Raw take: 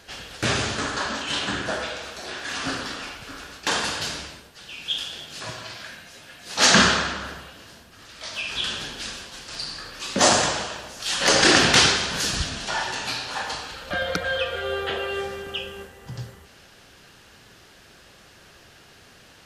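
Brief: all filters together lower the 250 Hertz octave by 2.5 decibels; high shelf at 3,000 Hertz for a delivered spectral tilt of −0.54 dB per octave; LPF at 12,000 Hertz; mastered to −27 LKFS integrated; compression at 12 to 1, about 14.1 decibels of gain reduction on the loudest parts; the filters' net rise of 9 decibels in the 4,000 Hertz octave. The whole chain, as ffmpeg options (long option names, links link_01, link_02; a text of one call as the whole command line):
ffmpeg -i in.wav -af "lowpass=12000,equalizer=frequency=250:width_type=o:gain=-3.5,highshelf=frequency=3000:gain=5.5,equalizer=frequency=4000:width_type=o:gain=7,acompressor=threshold=-20dB:ratio=12,volume=-3dB" out.wav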